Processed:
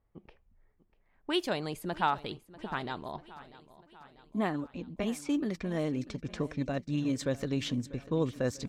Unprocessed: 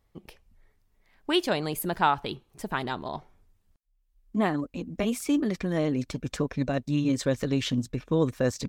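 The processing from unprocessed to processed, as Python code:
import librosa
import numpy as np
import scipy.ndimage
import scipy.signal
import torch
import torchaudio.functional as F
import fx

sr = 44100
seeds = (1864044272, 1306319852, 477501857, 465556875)

y = fx.env_lowpass(x, sr, base_hz=1700.0, full_db=-23.0)
y = fx.echo_feedback(y, sr, ms=643, feedback_pct=57, wet_db=-18.0)
y = F.gain(torch.from_numpy(y), -5.5).numpy()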